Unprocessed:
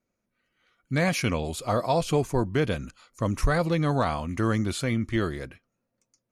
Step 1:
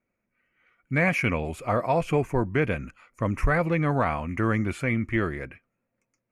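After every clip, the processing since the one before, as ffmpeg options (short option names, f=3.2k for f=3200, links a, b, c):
-af "highshelf=f=3k:t=q:w=3:g=-8.5"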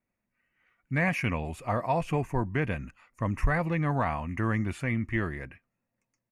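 -af "aecho=1:1:1.1:0.34,volume=-4dB"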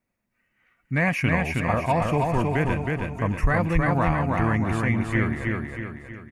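-af "aecho=1:1:318|636|954|1272|1590|1908:0.708|0.333|0.156|0.0735|0.0345|0.0162,volume=4dB"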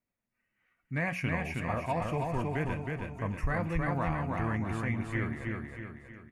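-af "flanger=delay=6.9:depth=7.1:regen=-73:speed=0.39:shape=sinusoidal,volume=-5dB"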